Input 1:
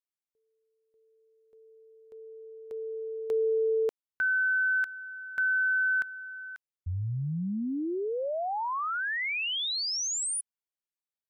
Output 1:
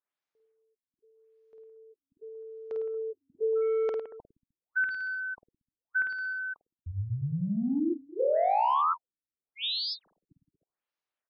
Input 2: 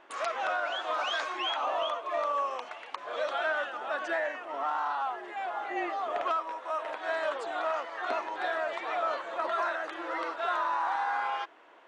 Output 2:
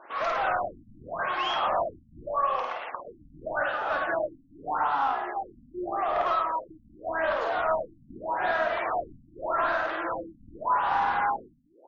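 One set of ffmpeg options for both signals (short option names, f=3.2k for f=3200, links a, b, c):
-filter_complex "[0:a]asplit=2[a][b];[b]highpass=f=720:p=1,volume=15dB,asoftclip=type=tanh:threshold=-19dB[c];[a][c]amix=inputs=2:normalize=0,lowpass=f=1.5k:p=1,volume=-6dB,aecho=1:1:50|105|165.5|232|305.3:0.631|0.398|0.251|0.158|0.1,afftfilt=real='re*lt(b*sr/1024,280*pow(7100/280,0.5+0.5*sin(2*PI*0.84*pts/sr)))':imag='im*lt(b*sr/1024,280*pow(7100/280,0.5+0.5*sin(2*PI*0.84*pts/sr)))':win_size=1024:overlap=0.75"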